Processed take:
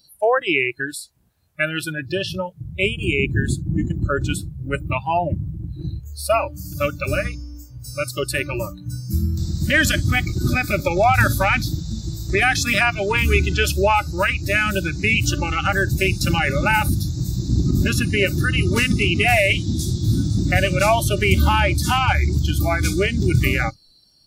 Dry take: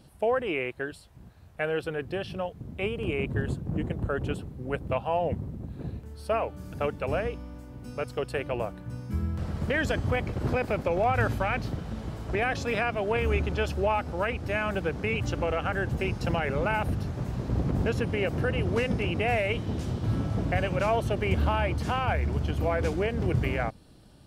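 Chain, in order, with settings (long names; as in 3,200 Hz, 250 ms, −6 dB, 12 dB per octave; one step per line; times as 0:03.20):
high-shelf EQ 2,400 Hz +8.5 dB
noise reduction from a noise print of the clip's start 23 dB
high-shelf EQ 8,700 Hz +11 dB
level +9 dB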